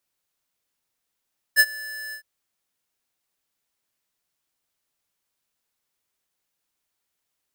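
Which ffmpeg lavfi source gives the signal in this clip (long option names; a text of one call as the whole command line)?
ffmpeg -f lavfi -i "aevalsrc='0.237*(2*lt(mod(1740*t,1),0.5)-1)':duration=0.662:sample_rate=44100,afade=type=in:duration=0.04,afade=type=out:start_time=0.04:duration=0.049:silence=0.0794,afade=type=out:start_time=0.57:duration=0.092" out.wav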